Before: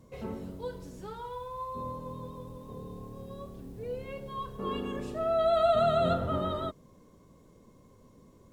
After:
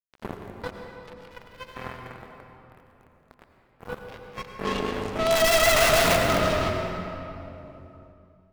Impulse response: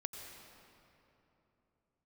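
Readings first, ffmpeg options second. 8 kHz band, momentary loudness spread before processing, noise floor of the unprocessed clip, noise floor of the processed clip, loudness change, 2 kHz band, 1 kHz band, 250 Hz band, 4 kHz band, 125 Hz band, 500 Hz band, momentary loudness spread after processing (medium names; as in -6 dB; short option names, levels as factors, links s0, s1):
no reading, 19 LU, -59 dBFS, -61 dBFS, +9.5 dB, +22.0 dB, +4.5 dB, +4.5 dB, +16.0 dB, +4.5 dB, +4.0 dB, 22 LU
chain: -filter_complex "[0:a]acrusher=bits=4:mix=0:aa=0.5,aeval=exprs='(mod(14.1*val(0)+1,2)-1)/14.1':c=same[s0];[1:a]atrim=start_sample=2205[s1];[s0][s1]afir=irnorm=-1:irlink=0,volume=2.66"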